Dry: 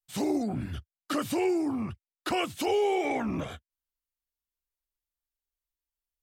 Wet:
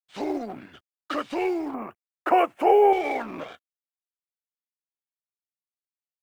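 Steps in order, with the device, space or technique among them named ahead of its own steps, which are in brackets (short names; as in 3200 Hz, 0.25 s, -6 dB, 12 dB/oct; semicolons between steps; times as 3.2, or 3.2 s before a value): phone line with mismatched companding (BPF 380–3300 Hz; G.711 law mismatch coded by A); 1.74–2.93 EQ curve 170 Hz 0 dB, 680 Hz +10 dB, 2600 Hz -2 dB, 3700 Hz -18 dB, 12000 Hz +4 dB; gain +5 dB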